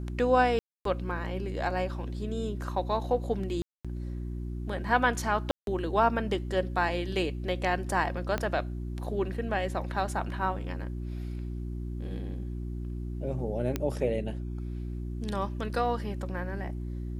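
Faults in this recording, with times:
hum 60 Hz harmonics 6 -35 dBFS
0.59–0.85 s: dropout 263 ms
3.62–3.85 s: dropout 226 ms
5.51–5.67 s: dropout 162 ms
8.38 s: pop -16 dBFS
13.76 s: pop -15 dBFS

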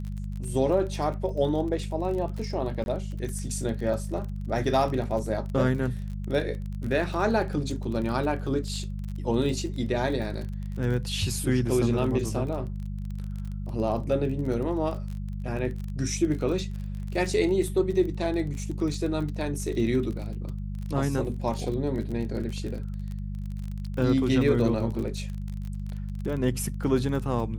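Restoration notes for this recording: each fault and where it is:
crackle 30 per s -33 dBFS
hum 50 Hz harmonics 4 -33 dBFS
2.84–2.86 s: dropout 21 ms

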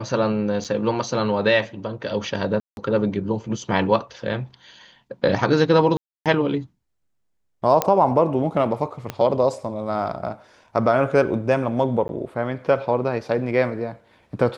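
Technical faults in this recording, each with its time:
0.64–0.65 s: dropout 6.7 ms
2.60–2.77 s: dropout 171 ms
5.97–6.26 s: dropout 287 ms
7.82 s: pop -4 dBFS
9.10 s: pop -12 dBFS
12.08–12.09 s: dropout 11 ms

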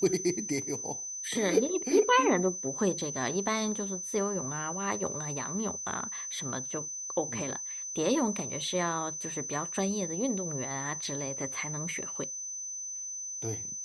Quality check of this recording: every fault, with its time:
whine 6.1 kHz -36 dBFS

